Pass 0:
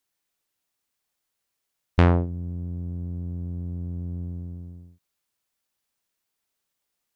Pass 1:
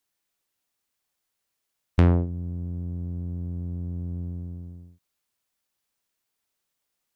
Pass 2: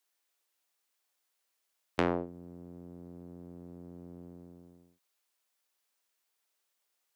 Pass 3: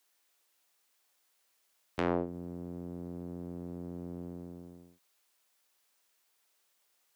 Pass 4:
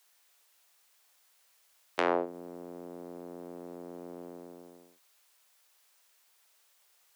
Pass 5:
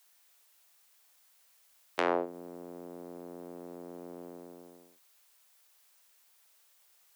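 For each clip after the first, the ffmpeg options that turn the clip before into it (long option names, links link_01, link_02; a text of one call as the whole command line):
ffmpeg -i in.wav -filter_complex "[0:a]acrossover=split=440[link_01][link_02];[link_02]acompressor=threshold=-34dB:ratio=2[link_03];[link_01][link_03]amix=inputs=2:normalize=0" out.wav
ffmpeg -i in.wav -af "highpass=390" out.wav
ffmpeg -i in.wav -af "alimiter=limit=-24dB:level=0:latency=1:release=369,volume=6.5dB" out.wav
ffmpeg -i in.wav -af "highpass=470,volume=6.5dB" out.wav
ffmpeg -i in.wav -af "highshelf=frequency=9600:gain=4.5,volume=-1dB" out.wav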